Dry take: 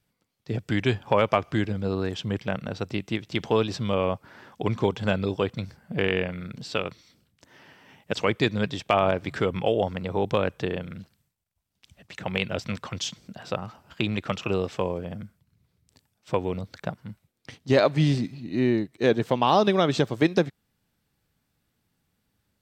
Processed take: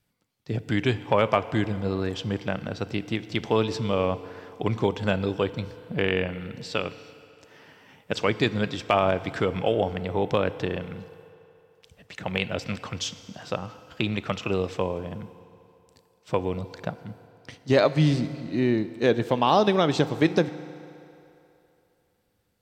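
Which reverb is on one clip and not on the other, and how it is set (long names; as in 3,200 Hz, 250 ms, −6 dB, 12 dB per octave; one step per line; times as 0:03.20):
feedback delay network reverb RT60 3 s, low-frequency decay 0.7×, high-frequency decay 0.8×, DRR 13.5 dB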